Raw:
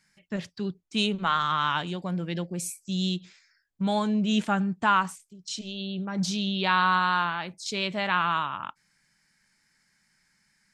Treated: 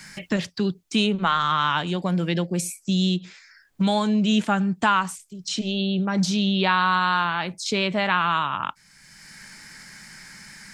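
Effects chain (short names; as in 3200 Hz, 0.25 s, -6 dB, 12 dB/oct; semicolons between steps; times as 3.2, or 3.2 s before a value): three-band squash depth 70%; gain +4 dB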